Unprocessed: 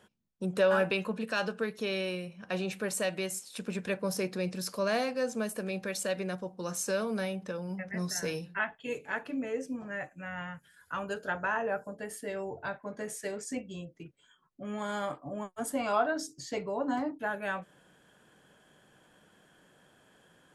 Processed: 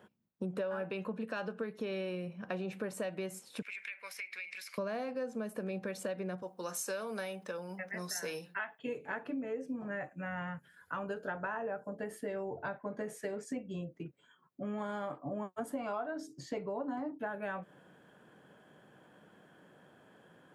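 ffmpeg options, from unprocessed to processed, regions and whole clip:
-filter_complex "[0:a]asettb=1/sr,asplit=3[a][b][c];[a]atrim=end=3.624[d];[b]atrim=start=3.62:end=4.78,asetpts=PTS-STARTPTS,afade=t=in:d=0.004:c=qsin,afade=t=out:st=1.156:d=0.004:c=qsin,highpass=f=2.2k:t=q:w=11,acompressor=threshold=-36dB:ratio=16:attack=3.2:release=140:knee=1:detection=peak[e];[c]atrim=start=4.776[f];[d][e]acrossfade=d=0.004:c1=hsin:c2=qsin[g];[g][f]acrossfade=d=0.004:c1=qsin:c2=hsin,asettb=1/sr,asplit=3[h][i][j];[h]atrim=end=6.424[k];[i]atrim=start=6.42:end=8.79,asetpts=PTS-STARTPTS,afade=t=in:d=0.004:c=qsin,afade=t=out:st=2.366:d=0.004:c=qsin,highpass=f=760:p=1,highshelf=f=4.3k:g=10.5[l];[j]atrim=start=8.786[m];[k][l]acrossfade=d=0.004:c1=hsin:c2=qsin[n];[n][m]acrossfade=d=0.004:c1=qsin:c2=hsin,highpass=110,equalizer=f=7.6k:w=0.34:g=-13.5,acompressor=threshold=-39dB:ratio=6,volume=4dB"

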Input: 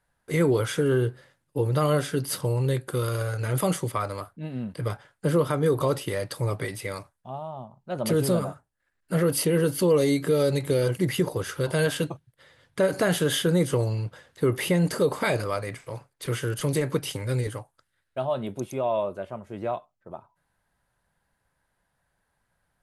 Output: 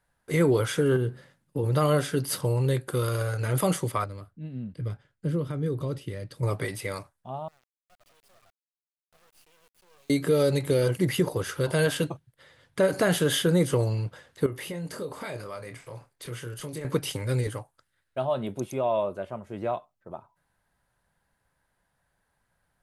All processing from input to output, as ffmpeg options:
-filter_complex "[0:a]asettb=1/sr,asplit=3[a][b][c];[a]atrim=end=0.964[d];[b]atrim=start=0.96:end=1.64,asetpts=PTS-STARTPTS,afade=t=in:d=0.004:c=qsin,afade=t=out:st=0.676:d=0.004:c=qsin,equalizer=f=190:t=o:w=0.93:g=10,acompressor=threshold=-27dB:ratio=2:attack=3.2:release=140:knee=1:detection=peak[e];[c]atrim=start=1.636[f];[d][e]acrossfade=d=0.004:c1=hsin:c2=qsin[g];[g][f]acrossfade=d=0.004:c1=qsin:c2=hsin,asettb=1/sr,asplit=3[h][i][j];[h]atrim=end=4.044[k];[i]atrim=start=4.04:end=6.43,asetpts=PTS-STARTPTS,afade=t=in:d=0.004:c=qsin,afade=t=out:st=2.386:d=0.004:c=qsin,lowpass=f=1.6k:p=1,equalizer=f=870:w=0.55:g=-15[l];[j]atrim=start=6.426[m];[k][l]acrossfade=d=0.004:c1=hsin:c2=qsin[n];[n][m]acrossfade=d=0.004:c1=qsin:c2=hsin,asettb=1/sr,asplit=3[o][p][q];[o]atrim=end=7.484[r];[p]atrim=start=7.48:end=10.1,asetpts=PTS-STARTPTS,afade=t=in:d=0.004:c=qsin,afade=t=out:st=2.616:d=0.004:c=qsin,asplit=3[s][t][u];[s]bandpass=f=730:t=q:w=8,volume=0dB[v];[t]bandpass=f=1.09k:t=q:w=8,volume=-6dB[w];[u]bandpass=f=2.44k:t=q:w=8,volume=-9dB[x];[v][w][x]amix=inputs=3:normalize=0,aderivative,acrusher=bits=7:dc=4:mix=0:aa=0.000001[y];[q]atrim=start=10.096[z];[r][y]acrossfade=d=0.004:c1=hsin:c2=qsin[aa];[aa][z]acrossfade=d=0.004:c1=qsin:c2=hsin,asettb=1/sr,asplit=3[ab][ac][ad];[ab]atrim=end=14.464[ae];[ac]atrim=start=14.46:end=16.85,asetpts=PTS-STARTPTS,afade=t=in:d=0.004:c=qsin,afade=t=out:st=2.386:d=0.004:c=qsin,acompressor=threshold=-42dB:ratio=2:attack=3.2:release=140:knee=1:detection=peak,asplit=2[af][ag];[ag]adelay=25,volume=-8.5dB[ah];[af][ah]amix=inputs=2:normalize=0,atrim=end_sample=105399[ai];[ad]atrim=start=16.846[aj];[ae][ai]acrossfade=d=0.004:c1=hsin:c2=qsin[ak];[ak][aj]acrossfade=d=0.004:c1=qsin:c2=hsin"

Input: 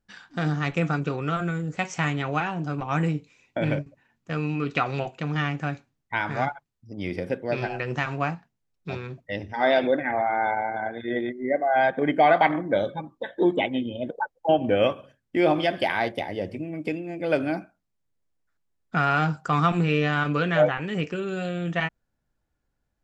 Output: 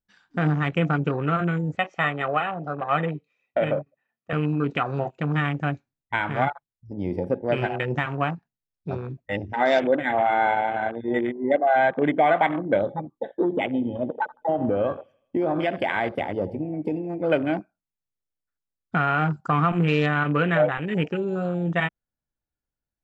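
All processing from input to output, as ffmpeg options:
-filter_complex "[0:a]asettb=1/sr,asplit=3[a][b][c];[a]atrim=end=1.774[d];[b]atrim=start=1.77:end=4.33,asetpts=PTS-STARTPTS,afade=t=in:d=0.004:c=qsin,afade=t=out:st=2.556:d=0.004:c=qsin,highpass=260,lowpass=3.1k,aecho=1:1:1.6:0.52,atrim=end_sample=112896[e];[c]atrim=start=4.326[f];[d][e]acrossfade=d=0.004:c1=hsin:c2=qsin[g];[g][f]acrossfade=d=0.004:c1=qsin:c2=hsin,asettb=1/sr,asplit=3[h][i][j];[h]atrim=end=13.414[k];[i]atrim=start=13.41:end=17.22,asetpts=PTS-STARTPTS,afade=t=in:d=0.004:c=qsin,afade=t=out:st=3.806:d=0.004:c=qsin,acompressor=threshold=-22dB:ratio=6:attack=3.2:release=140:knee=1:detection=peak,aecho=1:1:81|162|243|324|405:0.126|0.0718|0.0409|0.0233|0.0133,atrim=end_sample=168021[l];[j]atrim=start=17.216[m];[k][l]acrossfade=d=0.004:c1=hsin:c2=qsin[n];[n][m]acrossfade=d=0.004:c1=qsin:c2=hsin,afwtdn=0.02,alimiter=limit=-13.5dB:level=0:latency=1:release=312,volume=3.5dB"

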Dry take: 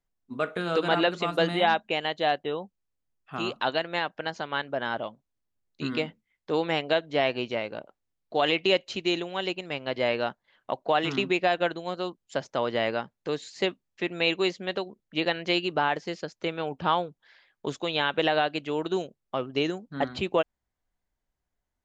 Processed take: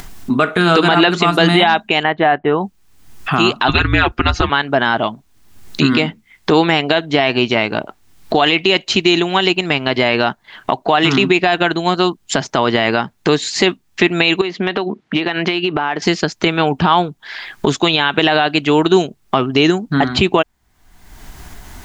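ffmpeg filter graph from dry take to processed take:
-filter_complex "[0:a]asettb=1/sr,asplit=3[a][b][c];[a]atrim=end=2.034[d];[b]atrim=start=2.03:end=2.61,asetpts=PTS-STARTPTS,afade=t=in:d=0.004:c=qsin,afade=t=out:st=0.576:d=0.004:c=qsin,lowpass=f=2k:w=0.5412,lowpass=f=2k:w=1.3066,aemphasis=mode=production:type=50fm[e];[c]atrim=start=2.606[f];[d][e]acrossfade=d=0.004:c1=hsin:c2=qsin[g];[g][f]acrossfade=d=0.004:c1=qsin:c2=hsin,asettb=1/sr,asplit=3[h][i][j];[h]atrim=end=3.684[k];[i]atrim=start=3.68:end=4.5,asetpts=PTS-STARTPTS,afade=t=in:d=0.004:c=qsin,afade=t=out:st=0.816:d=0.004:c=qsin,bass=f=250:g=4,treble=f=4k:g=-2,aecho=1:1:5.4:0.86,atrim=end_sample=36162,afreqshift=-230[l];[j]atrim=start=4.496[m];[k][l]acrossfade=d=0.004:c1=hsin:c2=qsin[n];[n][m]acrossfade=d=0.004:c1=qsin:c2=hsin,asettb=1/sr,asplit=3[o][p][q];[o]atrim=end=14.414[r];[p]atrim=start=14.41:end=16.02,asetpts=PTS-STARTPTS,afade=t=in:d=0.004:c=qsin,afade=t=out:st=1.606:d=0.004:c=qsin,highpass=170,lowpass=3.1k,acompressor=threshold=-34dB:ratio=10:attack=3.2:release=140:knee=1:detection=peak[s];[q]atrim=start=16.016[t];[r][s]acrossfade=d=0.004:c1=hsin:c2=qsin[u];[u][t]acrossfade=d=0.004:c1=qsin:c2=hsin,equalizer=f=530:t=o:w=0.3:g=-13.5,acompressor=mode=upward:threshold=-28dB:ratio=2.5,alimiter=level_in=19.5dB:limit=-1dB:release=50:level=0:latency=1,volume=-1dB"

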